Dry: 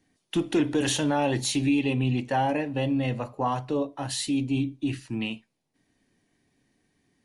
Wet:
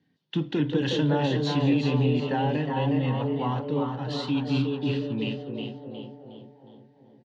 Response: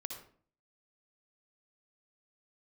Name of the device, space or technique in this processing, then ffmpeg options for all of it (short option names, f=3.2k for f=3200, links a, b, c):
frequency-shifting delay pedal into a guitar cabinet: -filter_complex "[0:a]asettb=1/sr,asplit=3[a][b][c];[a]atrim=end=4.274[d];[b]atrim=start=4.27:end=5.06,asetpts=PTS-STARTPTS,afade=t=in:d=0.004:c=qsin,afade=t=out:st=0.786:d=0.004:c=qsin,equalizer=f=3.1k:t=o:w=1.6:g=6[e];[c]atrim=start=5.056[f];[d][e]acrossfade=d=0.004:c1=hsin:c2=qsin[g];[g][f]acrossfade=d=0.004:c1=qsin:c2=hsin,asplit=2[h][i];[i]adelay=382,lowpass=f=960:p=1,volume=-6dB,asplit=2[j][k];[k]adelay=382,lowpass=f=960:p=1,volume=0.54,asplit=2[l][m];[m]adelay=382,lowpass=f=960:p=1,volume=0.54,asplit=2[n][o];[o]adelay=382,lowpass=f=960:p=1,volume=0.54,asplit=2[p][q];[q]adelay=382,lowpass=f=960:p=1,volume=0.54,asplit=2[r][s];[s]adelay=382,lowpass=f=960:p=1,volume=0.54,asplit=2[t][u];[u]adelay=382,lowpass=f=960:p=1,volume=0.54[v];[h][j][l][n][p][r][t][v]amix=inputs=8:normalize=0,asplit=5[w][x][y][z][aa];[x]adelay=362,afreqshift=150,volume=-6.5dB[ab];[y]adelay=724,afreqshift=300,volume=-14.9dB[ac];[z]adelay=1086,afreqshift=450,volume=-23.3dB[ad];[aa]adelay=1448,afreqshift=600,volume=-31.7dB[ae];[w][ab][ac][ad][ae]amix=inputs=5:normalize=0,highpass=110,equalizer=f=150:t=q:w=4:g=10,equalizer=f=350:t=q:w=4:g=-5,equalizer=f=670:t=q:w=4:g=-9,equalizer=f=1.2k:t=q:w=4:g=-7,equalizer=f=2.3k:t=q:w=4:g=-8,lowpass=f=4.1k:w=0.5412,lowpass=f=4.1k:w=1.3066"